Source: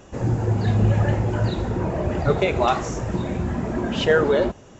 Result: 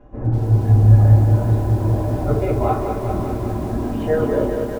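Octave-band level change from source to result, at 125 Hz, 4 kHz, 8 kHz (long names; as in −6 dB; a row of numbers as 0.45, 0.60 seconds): +7.5 dB, below −10 dB, can't be measured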